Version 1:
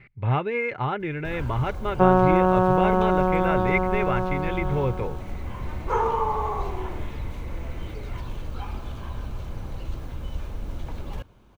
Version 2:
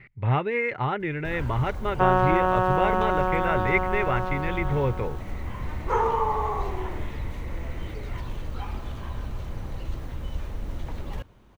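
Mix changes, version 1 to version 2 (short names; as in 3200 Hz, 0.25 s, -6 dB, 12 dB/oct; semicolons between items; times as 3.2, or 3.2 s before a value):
second sound: add tilt +4 dB/oct; master: remove notch 1900 Hz, Q 10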